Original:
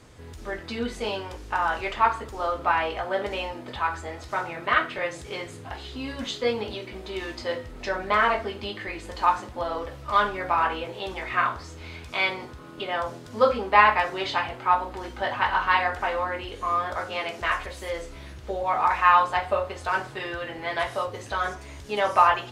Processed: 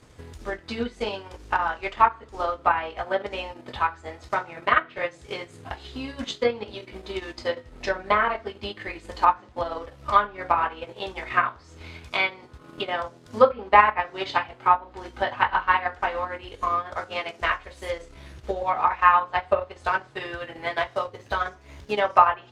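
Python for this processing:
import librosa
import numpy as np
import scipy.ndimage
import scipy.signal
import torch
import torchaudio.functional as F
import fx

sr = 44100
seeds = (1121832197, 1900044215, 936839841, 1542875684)

y = fx.median_filter(x, sr, points=5, at=(20.66, 22.04))
y = fx.transient(y, sr, attack_db=7, sustain_db=-9)
y = fx.env_lowpass_down(y, sr, base_hz=2500.0, full_db=-14.5)
y = y * 10.0 ** (-2.0 / 20.0)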